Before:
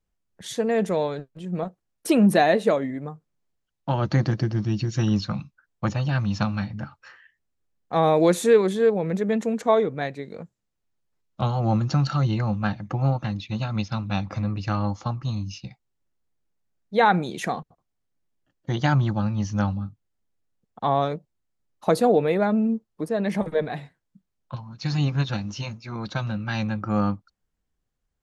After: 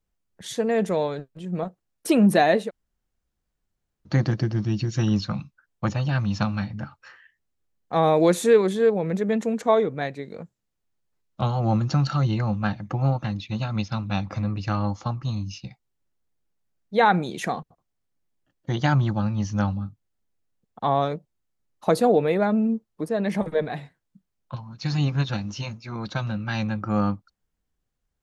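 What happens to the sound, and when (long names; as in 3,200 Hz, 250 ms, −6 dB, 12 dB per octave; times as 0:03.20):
0:02.66–0:04.10: fill with room tone, crossfade 0.10 s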